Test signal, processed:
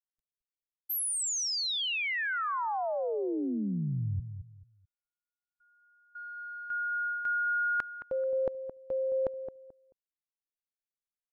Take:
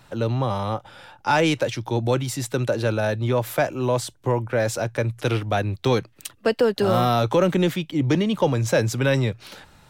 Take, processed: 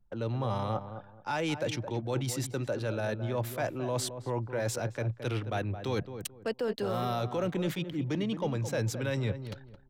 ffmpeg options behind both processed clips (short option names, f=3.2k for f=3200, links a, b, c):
-filter_complex "[0:a]anlmdn=1.58,areverse,acompressor=threshold=-31dB:ratio=4,areverse,asplit=2[a][b];[b]adelay=218,lowpass=f=1.1k:p=1,volume=-9dB,asplit=2[c][d];[d]adelay=218,lowpass=f=1.1k:p=1,volume=0.26,asplit=2[e][f];[f]adelay=218,lowpass=f=1.1k:p=1,volume=0.26[g];[a][c][e][g]amix=inputs=4:normalize=0"